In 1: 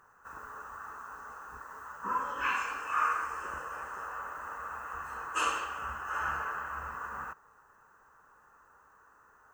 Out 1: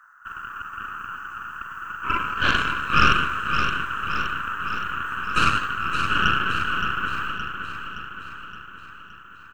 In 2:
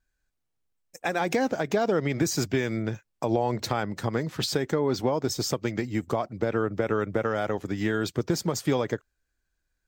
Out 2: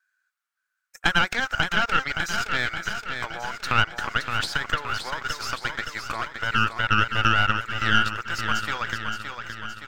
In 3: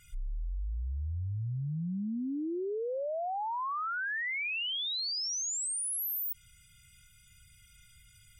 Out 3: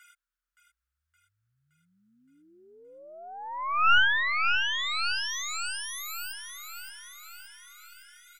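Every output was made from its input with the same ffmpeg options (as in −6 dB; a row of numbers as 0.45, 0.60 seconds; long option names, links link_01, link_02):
-filter_complex "[0:a]acrossover=split=5200[link_01][link_02];[link_02]acompressor=threshold=-42dB:ratio=4:attack=1:release=60[link_03];[link_01][link_03]amix=inputs=2:normalize=0,highpass=frequency=1400:width_type=q:width=5.4,aeval=exprs='0.398*(cos(1*acos(clip(val(0)/0.398,-1,1)))-cos(1*PI/2))+0.141*(cos(4*acos(clip(val(0)/0.398,-1,1)))-cos(4*PI/2))':channel_layout=same,aecho=1:1:569|1138|1707|2276|2845|3414|3983:0.447|0.255|0.145|0.0827|0.0472|0.0269|0.0153"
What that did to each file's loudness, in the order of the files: +11.5, +3.0, +7.0 LU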